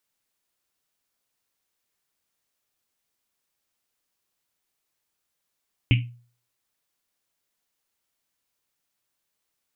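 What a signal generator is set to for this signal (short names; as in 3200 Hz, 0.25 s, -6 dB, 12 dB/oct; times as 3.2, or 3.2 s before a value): Risset drum, pitch 120 Hz, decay 0.44 s, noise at 2600 Hz, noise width 850 Hz, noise 20%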